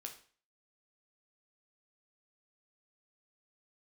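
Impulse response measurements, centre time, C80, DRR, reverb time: 14 ms, 14.5 dB, 2.5 dB, 0.45 s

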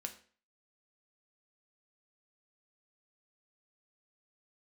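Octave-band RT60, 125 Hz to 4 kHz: 0.40 s, 0.45 s, 0.45 s, 0.45 s, 0.45 s, 0.40 s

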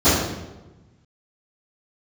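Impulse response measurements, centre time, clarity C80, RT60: 73 ms, 3.5 dB, 1.1 s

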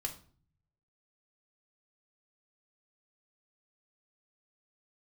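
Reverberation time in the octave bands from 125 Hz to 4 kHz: 1.2 s, 0.70 s, 0.50 s, 0.45 s, 0.35 s, 0.35 s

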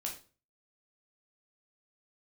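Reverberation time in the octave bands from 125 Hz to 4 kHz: 0.50 s, 0.45 s, 0.40 s, 0.35 s, 0.30 s, 0.30 s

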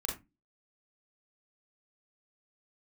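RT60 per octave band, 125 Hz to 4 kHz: 0.35 s, 0.40 s, 0.20 s, 0.20 s, 0.20 s, 0.15 s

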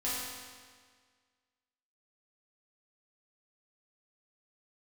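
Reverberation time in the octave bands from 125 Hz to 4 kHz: 1.7 s, 1.7 s, 1.7 s, 1.7 s, 1.7 s, 1.6 s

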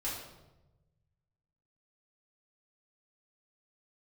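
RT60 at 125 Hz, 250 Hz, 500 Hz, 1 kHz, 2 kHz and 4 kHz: 2.0 s, 1.3 s, 1.1 s, 0.90 s, 0.75 s, 0.70 s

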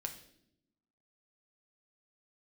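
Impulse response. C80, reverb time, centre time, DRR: 13.5 dB, 0.75 s, 12 ms, 3.5 dB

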